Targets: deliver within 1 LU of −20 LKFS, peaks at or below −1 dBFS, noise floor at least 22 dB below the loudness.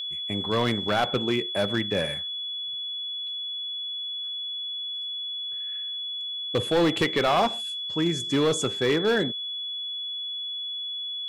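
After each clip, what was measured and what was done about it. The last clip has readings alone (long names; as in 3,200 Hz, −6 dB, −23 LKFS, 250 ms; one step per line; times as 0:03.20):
share of clipped samples 1.1%; peaks flattened at −17.0 dBFS; interfering tone 3,400 Hz; level of the tone −30 dBFS; integrated loudness −26.5 LKFS; sample peak −17.0 dBFS; target loudness −20.0 LKFS
→ clipped peaks rebuilt −17 dBFS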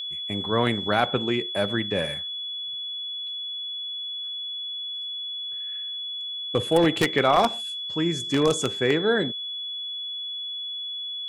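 share of clipped samples 0.0%; interfering tone 3,400 Hz; level of the tone −30 dBFS
→ notch filter 3,400 Hz, Q 30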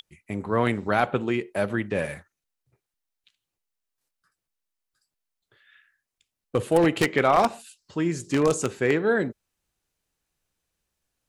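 interfering tone none found; integrated loudness −24.5 LKFS; sample peak −7.5 dBFS; target loudness −20.0 LKFS
→ level +4.5 dB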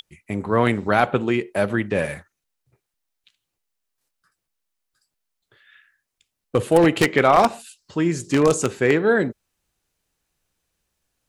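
integrated loudness −20.0 LKFS; sample peak −3.0 dBFS; background noise floor −81 dBFS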